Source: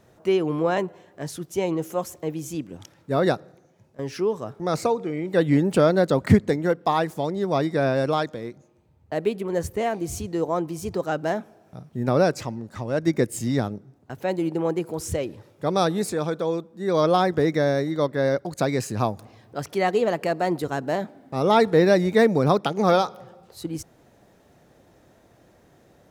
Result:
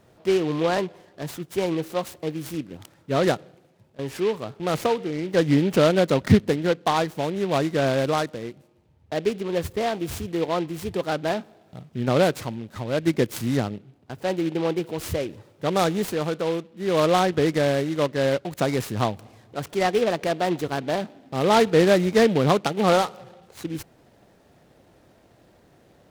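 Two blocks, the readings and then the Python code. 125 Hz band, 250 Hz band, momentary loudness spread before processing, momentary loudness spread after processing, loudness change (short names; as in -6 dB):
0.0 dB, 0.0 dB, 15 LU, 15 LU, 0.0 dB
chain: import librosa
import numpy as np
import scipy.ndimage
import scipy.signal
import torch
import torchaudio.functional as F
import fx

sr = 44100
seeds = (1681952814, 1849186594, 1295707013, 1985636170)

y = fx.noise_mod_delay(x, sr, seeds[0], noise_hz=2400.0, depth_ms=0.047)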